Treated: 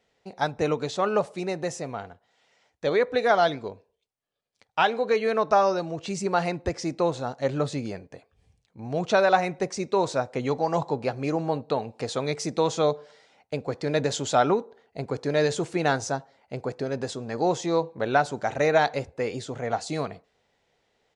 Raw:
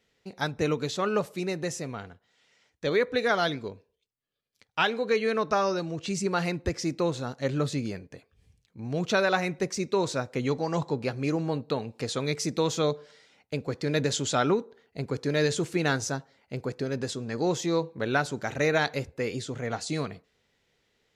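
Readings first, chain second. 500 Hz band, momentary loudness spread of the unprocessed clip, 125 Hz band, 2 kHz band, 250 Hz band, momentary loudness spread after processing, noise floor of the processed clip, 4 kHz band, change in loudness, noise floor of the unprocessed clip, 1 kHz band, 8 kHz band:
+3.5 dB, 10 LU, −1.0 dB, 0.0 dB, 0.0 dB, 12 LU, −74 dBFS, −1.0 dB, +2.5 dB, −75 dBFS, +6.0 dB, −1.5 dB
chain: parametric band 740 Hz +10 dB 1.1 octaves
downsampling to 22,050 Hz
level −1.5 dB

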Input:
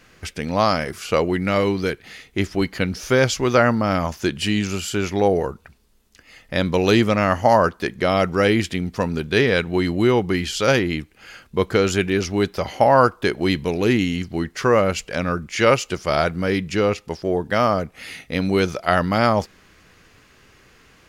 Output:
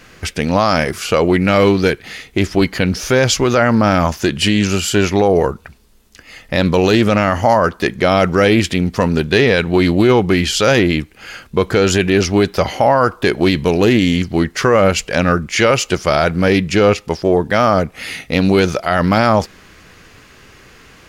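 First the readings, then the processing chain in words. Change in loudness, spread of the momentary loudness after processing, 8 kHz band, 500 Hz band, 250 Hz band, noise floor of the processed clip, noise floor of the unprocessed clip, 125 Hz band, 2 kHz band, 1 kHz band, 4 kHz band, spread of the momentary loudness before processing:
+6.0 dB, 6 LU, +8.0 dB, +5.5 dB, +6.5 dB, −45 dBFS, −54 dBFS, +6.5 dB, +5.5 dB, +4.5 dB, +7.0 dB, 9 LU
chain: brickwall limiter −12 dBFS, peak gain reduction 10 dB
highs frequency-modulated by the lows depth 0.11 ms
level +9 dB

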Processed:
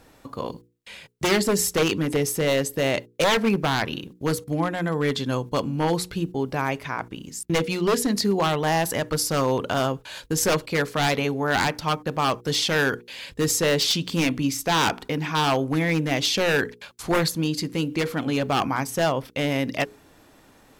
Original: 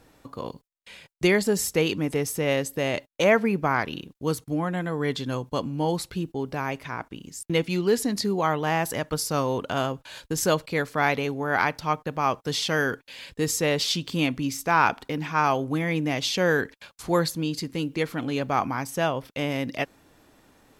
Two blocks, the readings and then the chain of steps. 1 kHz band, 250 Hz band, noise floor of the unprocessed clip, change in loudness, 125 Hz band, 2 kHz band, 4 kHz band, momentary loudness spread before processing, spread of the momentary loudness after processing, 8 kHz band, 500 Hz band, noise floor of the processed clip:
+0.5 dB, +2.0 dB, −62 dBFS, +2.0 dB, +2.5 dB, +1.5 dB, +5.0 dB, 9 LU, 9 LU, +4.5 dB, +1.5 dB, −55 dBFS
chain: wave folding −18 dBFS
mains-hum notches 60/120/180/240/300/360/420/480 Hz
level +4 dB

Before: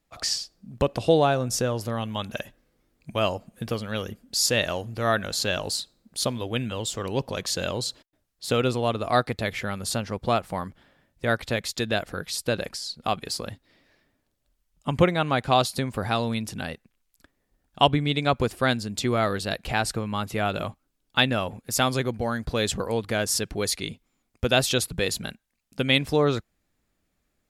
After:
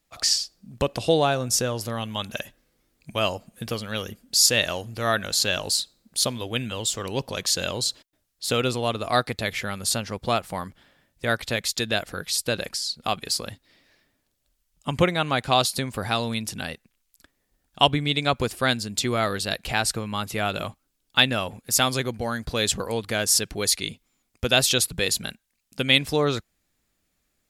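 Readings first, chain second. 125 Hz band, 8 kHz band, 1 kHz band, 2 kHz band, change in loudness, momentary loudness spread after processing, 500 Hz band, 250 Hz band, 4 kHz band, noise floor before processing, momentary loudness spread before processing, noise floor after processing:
−1.5 dB, +6.0 dB, 0.0 dB, +2.0 dB, +2.0 dB, 12 LU, −1.0 dB, −1.5 dB, +4.5 dB, −75 dBFS, 11 LU, −74 dBFS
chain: high-shelf EQ 2,200 Hz +8 dB
level −1.5 dB

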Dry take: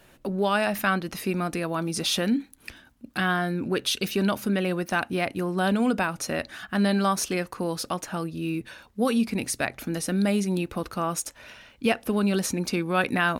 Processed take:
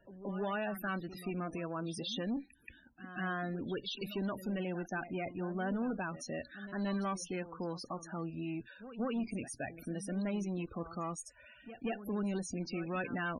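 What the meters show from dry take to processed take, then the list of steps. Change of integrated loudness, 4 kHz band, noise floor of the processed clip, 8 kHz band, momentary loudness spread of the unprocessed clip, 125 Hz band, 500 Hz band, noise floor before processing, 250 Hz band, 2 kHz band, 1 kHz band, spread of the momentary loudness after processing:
−12.0 dB, −15.0 dB, −61 dBFS, −16.0 dB, 8 LU, −11.0 dB, −12.0 dB, −56 dBFS, −11.5 dB, −13.5 dB, −13.0 dB, 7 LU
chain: tube saturation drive 22 dB, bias 0.3
echo ahead of the sound 178 ms −13 dB
spectral peaks only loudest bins 32
level −8.5 dB

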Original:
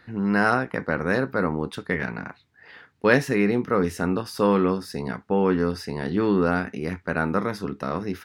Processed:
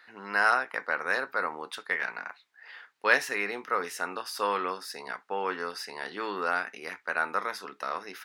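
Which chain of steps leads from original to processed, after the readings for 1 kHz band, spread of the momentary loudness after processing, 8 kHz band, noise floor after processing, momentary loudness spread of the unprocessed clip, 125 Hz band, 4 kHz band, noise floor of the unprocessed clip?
−2.0 dB, 13 LU, 0.0 dB, −64 dBFS, 10 LU, below −25 dB, 0.0 dB, −58 dBFS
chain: high-pass filter 860 Hz 12 dB per octave

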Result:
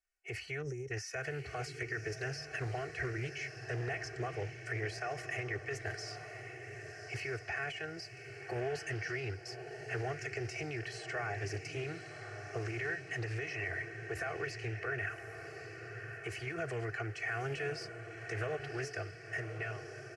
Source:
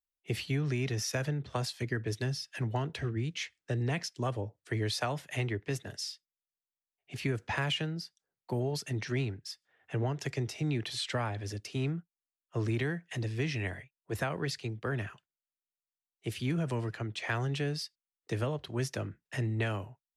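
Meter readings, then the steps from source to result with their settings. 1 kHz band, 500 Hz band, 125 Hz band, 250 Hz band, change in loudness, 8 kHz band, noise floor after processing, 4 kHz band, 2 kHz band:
−2.5 dB, −2.5 dB, −8.0 dB, −10.0 dB, −5.0 dB, −6.5 dB, −50 dBFS, −9.0 dB, +1.5 dB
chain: fade-out on the ending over 2.37 s
tilt shelving filter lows −5.5 dB, about 710 Hz
comb filter 2.7 ms, depth 87%
downward compressor, threshold −34 dBFS, peak gain reduction 13 dB
brickwall limiter −32 dBFS, peak gain reduction 9.5 dB
gain on a spectral selection 0:00.62–0:00.91, 570–5,400 Hz −20 dB
high-frequency loss of the air 94 metres
phaser with its sweep stopped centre 980 Hz, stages 6
feedback delay with all-pass diffusion 1,135 ms, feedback 49%, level −8 dB
highs frequency-modulated by the lows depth 0.17 ms
level +6.5 dB

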